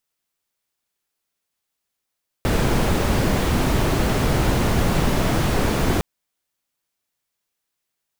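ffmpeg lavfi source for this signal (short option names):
-f lavfi -i "anoisesrc=c=brown:a=0.556:d=3.56:r=44100:seed=1"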